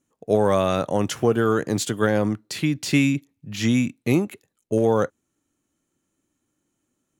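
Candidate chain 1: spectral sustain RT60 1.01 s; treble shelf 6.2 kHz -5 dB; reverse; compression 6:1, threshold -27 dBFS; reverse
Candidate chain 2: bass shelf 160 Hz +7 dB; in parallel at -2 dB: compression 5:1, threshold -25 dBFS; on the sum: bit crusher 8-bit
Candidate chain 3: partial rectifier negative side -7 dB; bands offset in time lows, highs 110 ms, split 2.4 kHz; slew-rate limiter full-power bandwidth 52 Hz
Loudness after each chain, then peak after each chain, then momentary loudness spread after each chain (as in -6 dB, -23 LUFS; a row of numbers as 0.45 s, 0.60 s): -31.0 LUFS, -18.5 LUFS, -26.5 LUFS; -16.5 dBFS, -3.0 dBFS, -9.5 dBFS; 4 LU, 5 LU, 6 LU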